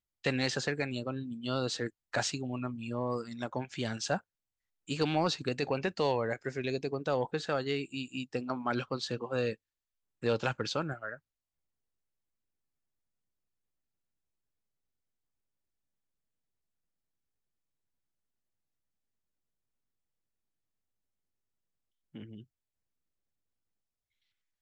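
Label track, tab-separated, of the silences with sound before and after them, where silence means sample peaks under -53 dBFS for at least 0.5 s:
4.200000	4.880000	silence
9.550000	10.230000	silence
11.180000	22.150000	silence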